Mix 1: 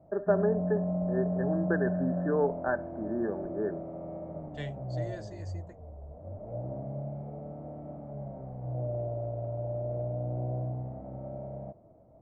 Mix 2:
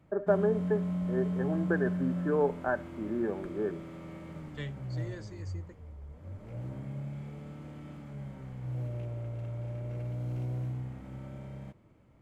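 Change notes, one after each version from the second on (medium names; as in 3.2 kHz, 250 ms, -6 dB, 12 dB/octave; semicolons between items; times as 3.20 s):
background: remove resonant low-pass 670 Hz, resonance Q 7.9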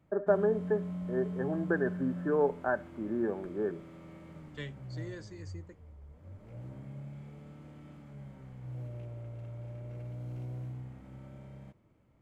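background -5.5 dB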